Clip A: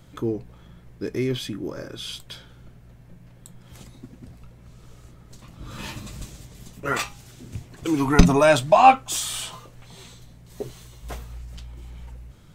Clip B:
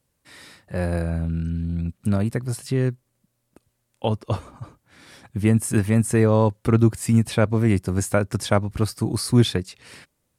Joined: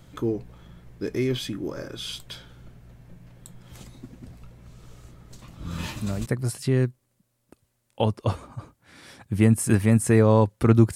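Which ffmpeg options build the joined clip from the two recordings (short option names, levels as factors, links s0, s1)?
-filter_complex "[1:a]asplit=2[s0][s1];[0:a]apad=whole_dur=10.95,atrim=end=10.95,atrim=end=6.262[s2];[s1]atrim=start=2.298:end=6.99[s3];[s0]atrim=start=1.69:end=2.3,asetpts=PTS-STARTPTS,volume=0.398,afade=t=in:d=0.004:c=hsin,afade=t=out:st=0.606:d=0.004:c=hsin,adelay=249165S[s4];[s2][s3]acrossfade=d=0.004:c1=hsin:c2=hsin[s5];[s5][s4]amix=inputs=2:normalize=0"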